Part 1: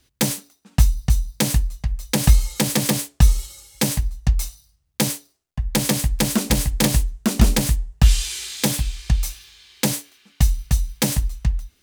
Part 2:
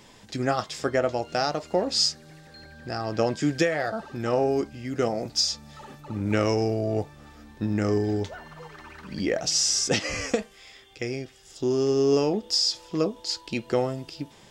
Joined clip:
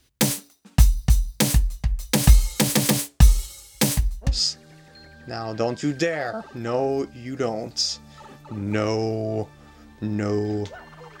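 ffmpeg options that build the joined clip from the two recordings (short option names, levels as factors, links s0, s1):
-filter_complex "[0:a]apad=whole_dur=11.2,atrim=end=11.2,atrim=end=4.41,asetpts=PTS-STARTPTS[s0];[1:a]atrim=start=1.8:end=8.79,asetpts=PTS-STARTPTS[s1];[s0][s1]acrossfade=d=0.2:c1=tri:c2=tri"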